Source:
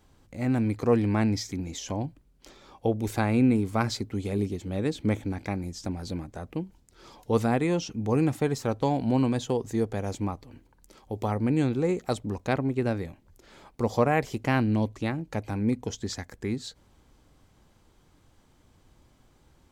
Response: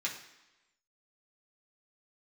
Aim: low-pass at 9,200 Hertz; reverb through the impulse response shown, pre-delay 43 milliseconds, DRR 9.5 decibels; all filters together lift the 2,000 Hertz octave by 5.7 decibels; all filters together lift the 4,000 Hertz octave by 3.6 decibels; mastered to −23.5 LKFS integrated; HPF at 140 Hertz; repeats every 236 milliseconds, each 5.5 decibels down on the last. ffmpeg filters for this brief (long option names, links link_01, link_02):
-filter_complex "[0:a]highpass=140,lowpass=9200,equalizer=frequency=2000:width_type=o:gain=6.5,equalizer=frequency=4000:width_type=o:gain=3,aecho=1:1:236|472|708|944|1180|1416|1652:0.531|0.281|0.149|0.079|0.0419|0.0222|0.0118,asplit=2[link_01][link_02];[1:a]atrim=start_sample=2205,adelay=43[link_03];[link_02][link_03]afir=irnorm=-1:irlink=0,volume=-13dB[link_04];[link_01][link_04]amix=inputs=2:normalize=0,volume=3.5dB"